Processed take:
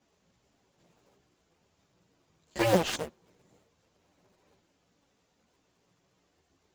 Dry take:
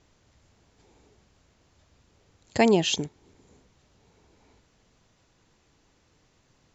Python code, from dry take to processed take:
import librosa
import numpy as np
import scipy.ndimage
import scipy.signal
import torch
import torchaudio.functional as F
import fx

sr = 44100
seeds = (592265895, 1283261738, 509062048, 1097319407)

p1 = fx.cycle_switch(x, sr, every=2, mode='inverted')
p2 = scipy.signal.sosfilt(scipy.signal.butter(2, 110.0, 'highpass', fs=sr, output='sos'), p1)
p3 = fx.sample_hold(p2, sr, seeds[0], rate_hz=2300.0, jitter_pct=0)
p4 = p2 + (p3 * librosa.db_to_amplitude(-9.0))
p5 = fx.chorus_voices(p4, sr, voices=4, hz=0.44, base_ms=14, depth_ms=3.8, mix_pct=60)
y = p5 * librosa.db_to_amplitude(-4.5)